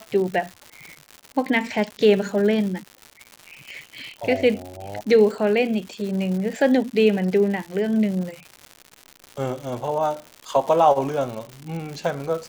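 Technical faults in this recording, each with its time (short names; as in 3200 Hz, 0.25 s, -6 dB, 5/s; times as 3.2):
crackle 210/s -30 dBFS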